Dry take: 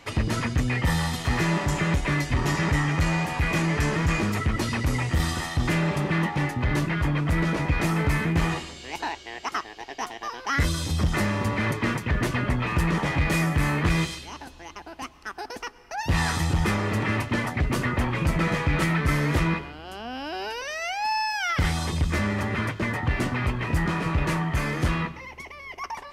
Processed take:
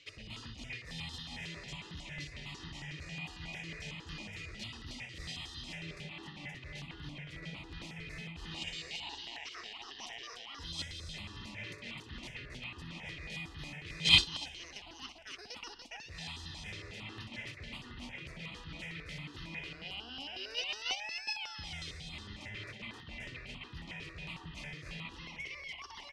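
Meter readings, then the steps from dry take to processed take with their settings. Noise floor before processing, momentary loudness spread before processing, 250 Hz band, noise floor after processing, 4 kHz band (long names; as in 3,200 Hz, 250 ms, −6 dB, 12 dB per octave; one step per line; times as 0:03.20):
−45 dBFS, 12 LU, −23.0 dB, −52 dBFS, −1.5 dB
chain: reversed playback
downward compressor 10 to 1, threshold −34 dBFS, peak gain reduction 16.5 dB
reversed playback
high shelf with overshoot 2,000 Hz +12.5 dB, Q 1.5
mains-hum notches 60/120 Hz
on a send: loudspeakers that aren't time-aligned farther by 21 metres −9 dB, 99 metres −4 dB
on the sum: noise gate −24 dBFS, range −20 dB
low-pass filter 4,500 Hz 12 dB per octave
step-sequenced phaser 11 Hz 220–2,300 Hz
level +10.5 dB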